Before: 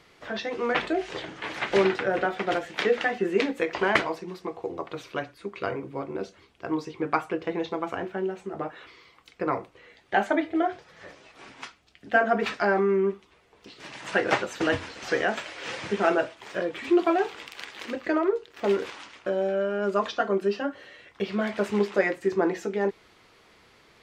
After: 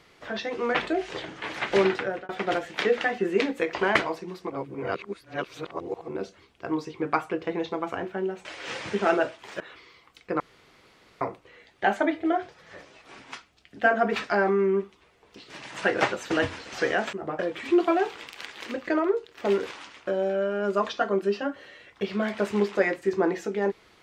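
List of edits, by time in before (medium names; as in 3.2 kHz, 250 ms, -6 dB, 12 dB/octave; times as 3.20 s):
1.98–2.29 s: fade out
4.50–6.08 s: reverse
8.45–8.71 s: swap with 15.43–16.58 s
9.51 s: insert room tone 0.81 s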